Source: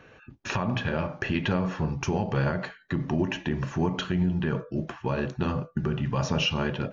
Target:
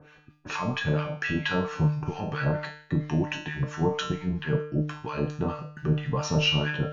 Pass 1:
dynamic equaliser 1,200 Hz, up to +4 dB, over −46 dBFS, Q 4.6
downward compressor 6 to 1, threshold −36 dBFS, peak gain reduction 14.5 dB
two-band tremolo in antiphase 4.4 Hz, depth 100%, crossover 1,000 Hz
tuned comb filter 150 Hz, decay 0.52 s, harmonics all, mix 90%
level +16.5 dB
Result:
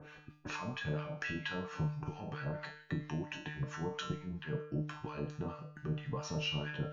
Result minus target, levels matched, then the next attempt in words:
downward compressor: peak gain reduction +14.5 dB
dynamic equaliser 1,200 Hz, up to +4 dB, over −46 dBFS, Q 4.6
two-band tremolo in antiphase 4.4 Hz, depth 100%, crossover 1,000 Hz
tuned comb filter 150 Hz, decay 0.52 s, harmonics all, mix 90%
level +16.5 dB

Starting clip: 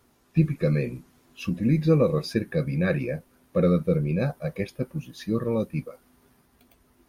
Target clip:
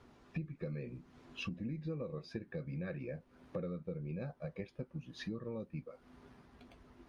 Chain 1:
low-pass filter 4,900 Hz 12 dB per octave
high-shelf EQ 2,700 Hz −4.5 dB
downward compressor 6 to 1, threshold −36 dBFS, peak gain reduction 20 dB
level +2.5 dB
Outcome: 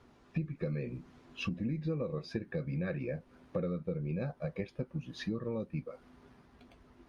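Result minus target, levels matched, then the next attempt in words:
downward compressor: peak gain reduction −6 dB
low-pass filter 4,900 Hz 12 dB per octave
high-shelf EQ 2,700 Hz −4.5 dB
downward compressor 6 to 1, threshold −43 dBFS, peak gain reduction 25.5 dB
level +2.5 dB

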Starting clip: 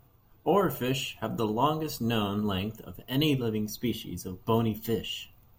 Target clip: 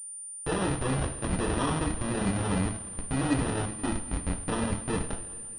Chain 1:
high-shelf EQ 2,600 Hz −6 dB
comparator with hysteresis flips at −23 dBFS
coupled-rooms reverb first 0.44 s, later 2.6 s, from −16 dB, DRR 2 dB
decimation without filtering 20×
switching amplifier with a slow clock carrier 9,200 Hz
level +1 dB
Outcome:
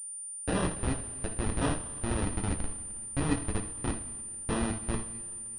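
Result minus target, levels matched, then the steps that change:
comparator with hysteresis: distortion +6 dB
change: comparator with hysteresis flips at −30.5 dBFS

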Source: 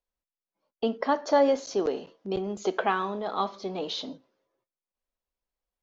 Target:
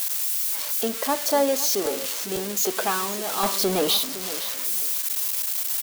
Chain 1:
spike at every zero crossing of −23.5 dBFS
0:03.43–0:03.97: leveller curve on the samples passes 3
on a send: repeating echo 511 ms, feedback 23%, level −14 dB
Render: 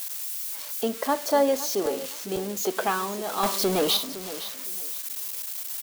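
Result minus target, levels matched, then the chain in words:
spike at every zero crossing: distortion −7 dB
spike at every zero crossing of −16 dBFS
0:03.43–0:03.97: leveller curve on the samples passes 3
on a send: repeating echo 511 ms, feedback 23%, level −14 dB

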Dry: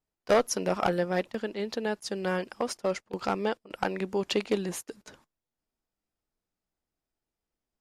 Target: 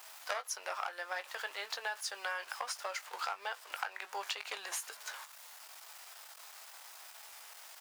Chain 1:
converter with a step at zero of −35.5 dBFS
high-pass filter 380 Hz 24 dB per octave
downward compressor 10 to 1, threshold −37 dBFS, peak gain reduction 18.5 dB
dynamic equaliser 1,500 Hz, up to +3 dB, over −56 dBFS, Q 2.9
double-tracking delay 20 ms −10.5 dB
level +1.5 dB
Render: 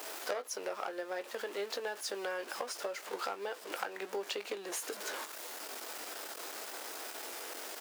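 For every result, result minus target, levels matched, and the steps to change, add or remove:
500 Hz band +7.5 dB; converter with a step at zero: distortion +7 dB
change: high-pass filter 790 Hz 24 dB per octave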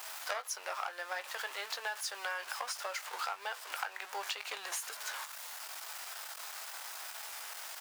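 converter with a step at zero: distortion +7 dB
change: converter with a step at zero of −43 dBFS

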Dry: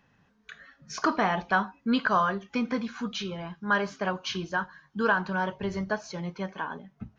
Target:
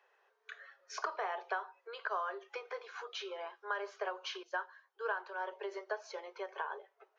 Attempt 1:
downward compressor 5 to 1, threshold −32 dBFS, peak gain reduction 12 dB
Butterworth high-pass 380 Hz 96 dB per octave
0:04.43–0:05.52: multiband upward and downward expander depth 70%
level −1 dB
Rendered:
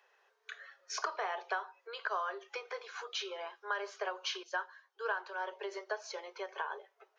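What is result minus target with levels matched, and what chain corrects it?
8,000 Hz band +6.0 dB
downward compressor 5 to 1, threshold −32 dBFS, peak gain reduction 12 dB
Butterworth high-pass 380 Hz 96 dB per octave
high-shelf EQ 3,200 Hz −9.5 dB
0:04.43–0:05.52: multiband upward and downward expander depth 70%
level −1 dB

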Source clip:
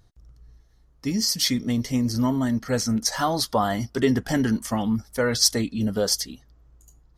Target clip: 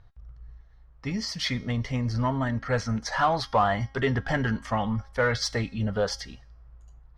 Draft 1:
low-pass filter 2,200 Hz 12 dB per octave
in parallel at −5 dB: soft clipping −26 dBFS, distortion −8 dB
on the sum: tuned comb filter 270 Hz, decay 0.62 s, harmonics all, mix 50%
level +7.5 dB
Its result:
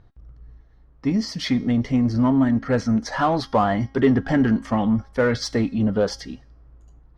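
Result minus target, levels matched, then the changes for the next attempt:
250 Hz band +5.5 dB
add after low-pass filter: parametric band 280 Hz −15 dB 1.4 octaves

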